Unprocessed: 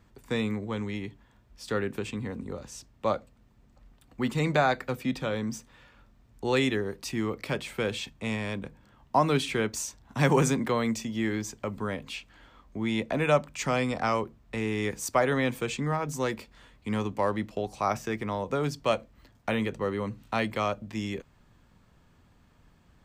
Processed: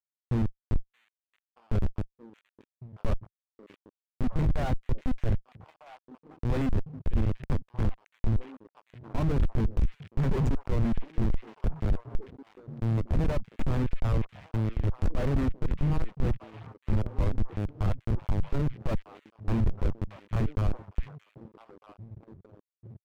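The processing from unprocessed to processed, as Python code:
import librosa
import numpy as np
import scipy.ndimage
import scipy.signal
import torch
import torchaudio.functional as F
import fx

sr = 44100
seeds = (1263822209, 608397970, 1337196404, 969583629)

p1 = fx.dereverb_blind(x, sr, rt60_s=1.1)
p2 = fx.schmitt(p1, sr, flips_db=-26.5)
p3 = fx.riaa(p2, sr, side='playback')
p4 = p3 + fx.echo_stepped(p3, sr, ms=625, hz=2500.0, octaves=-1.4, feedback_pct=70, wet_db=-7, dry=0)
p5 = fx.leveller(p4, sr, passes=2)
y = p5 * 10.0 ** (-8.0 / 20.0)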